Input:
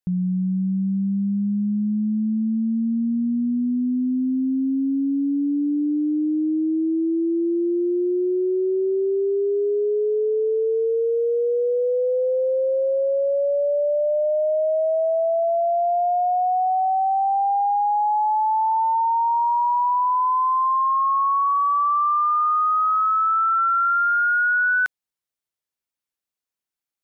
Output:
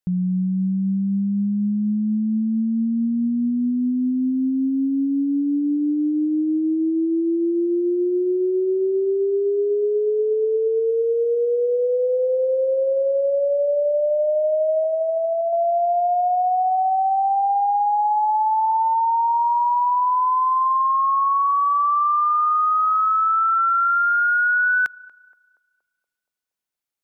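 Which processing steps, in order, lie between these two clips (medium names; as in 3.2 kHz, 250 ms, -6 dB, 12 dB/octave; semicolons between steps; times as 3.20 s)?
14.84–15.53 s: peaking EQ 1.3 kHz -11.5 dB 0.95 oct; band-passed feedback delay 236 ms, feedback 63%, band-pass 550 Hz, level -19.5 dB; trim +1 dB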